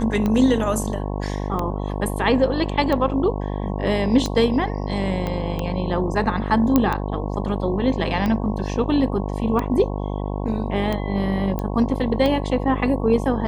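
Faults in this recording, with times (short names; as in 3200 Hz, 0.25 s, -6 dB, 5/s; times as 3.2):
buzz 50 Hz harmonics 22 -26 dBFS
tick 45 rpm -12 dBFS
5.27 pop -14 dBFS
6.76 pop -4 dBFS
11.59 pop -14 dBFS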